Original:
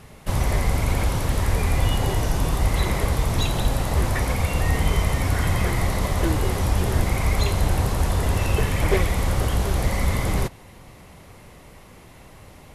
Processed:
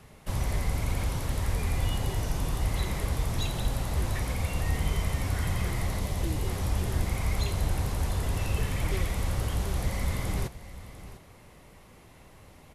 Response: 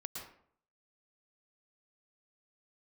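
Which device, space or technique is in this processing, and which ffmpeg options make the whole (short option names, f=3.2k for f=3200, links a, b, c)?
one-band saturation: -filter_complex "[0:a]acrossover=split=230|2500[a][b][c];[b]asoftclip=type=tanh:threshold=-28.5dB[d];[a][d][c]amix=inputs=3:normalize=0,asettb=1/sr,asplit=3[e][f][g];[e]atrim=end=6.004[h];[f]atrim=start=6:end=6.46,asetpts=PTS-STARTPTS,afade=t=in:d=0.004:c=qsin,afade=t=out:st=0.456:d=0.004:c=qsin,equalizer=f=1.4k:w=2.2:g=-7[i];[g]atrim=start=6.456[j];[h][i]acrossfade=d=0.004:c1=hsin:c2=qsin[k];[k][j]acrossfade=d=0.004:c1=qsin:c2=hsin,aecho=1:1:698:0.168,volume=-7dB"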